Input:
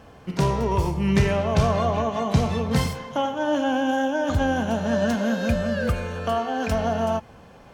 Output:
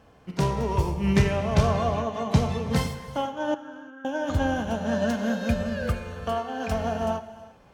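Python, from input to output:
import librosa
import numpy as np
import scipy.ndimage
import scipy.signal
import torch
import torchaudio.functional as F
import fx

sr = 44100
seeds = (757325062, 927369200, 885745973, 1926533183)

y = fx.double_bandpass(x, sr, hz=710.0, octaves=1.8, at=(3.54, 4.05))
y = fx.rev_gated(y, sr, seeds[0], gate_ms=380, shape='flat', drr_db=9.5)
y = fx.upward_expand(y, sr, threshold_db=-30.0, expansion=1.5)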